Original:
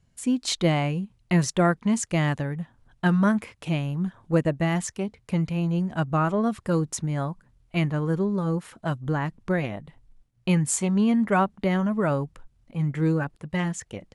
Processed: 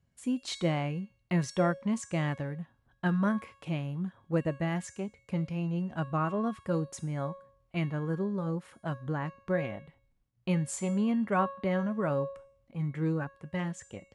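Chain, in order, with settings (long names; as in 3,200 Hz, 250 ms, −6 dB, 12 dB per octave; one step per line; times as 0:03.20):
high-pass filter 47 Hz
high-shelf EQ 4,500 Hz −7.5 dB
tuned comb filter 550 Hz, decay 0.57 s, mix 80%
level +6.5 dB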